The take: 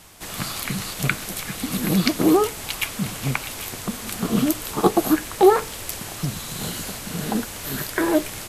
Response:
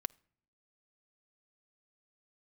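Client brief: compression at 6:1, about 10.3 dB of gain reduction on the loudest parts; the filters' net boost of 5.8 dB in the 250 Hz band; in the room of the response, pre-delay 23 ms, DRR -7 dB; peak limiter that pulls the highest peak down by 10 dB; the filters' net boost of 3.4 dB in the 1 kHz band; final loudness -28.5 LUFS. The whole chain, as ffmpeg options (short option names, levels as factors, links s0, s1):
-filter_complex "[0:a]equalizer=f=250:t=o:g=8,equalizer=f=1000:t=o:g=4,acompressor=threshold=0.126:ratio=6,alimiter=limit=0.168:level=0:latency=1,asplit=2[s0][s1];[1:a]atrim=start_sample=2205,adelay=23[s2];[s1][s2]afir=irnorm=-1:irlink=0,volume=2.66[s3];[s0][s3]amix=inputs=2:normalize=0,volume=0.335"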